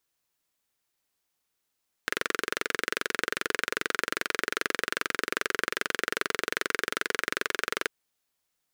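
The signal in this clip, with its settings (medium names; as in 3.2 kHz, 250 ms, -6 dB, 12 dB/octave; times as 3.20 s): single-cylinder engine model, steady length 5.79 s, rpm 2700, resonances 430/1500 Hz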